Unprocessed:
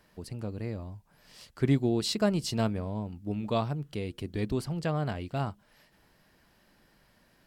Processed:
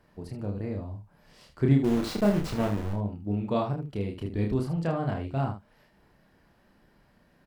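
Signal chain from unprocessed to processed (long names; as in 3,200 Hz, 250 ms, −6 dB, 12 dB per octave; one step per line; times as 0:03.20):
0:01.84–0:02.93: hold until the input has moved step −29 dBFS
high-shelf EQ 2,200 Hz −11.5 dB
ambience of single reflections 30 ms −3 dB, 77 ms −8.5 dB
level +1.5 dB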